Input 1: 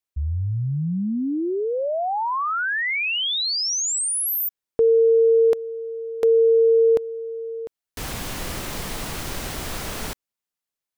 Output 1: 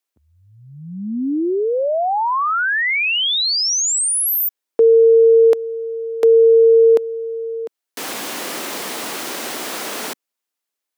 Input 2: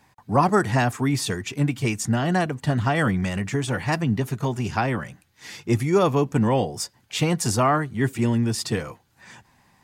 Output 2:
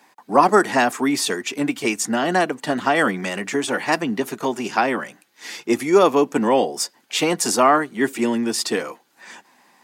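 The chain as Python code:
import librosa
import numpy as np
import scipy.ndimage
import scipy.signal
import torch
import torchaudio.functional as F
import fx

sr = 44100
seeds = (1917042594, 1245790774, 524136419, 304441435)

y = scipy.signal.sosfilt(scipy.signal.butter(4, 250.0, 'highpass', fs=sr, output='sos'), x)
y = y * 10.0 ** (5.5 / 20.0)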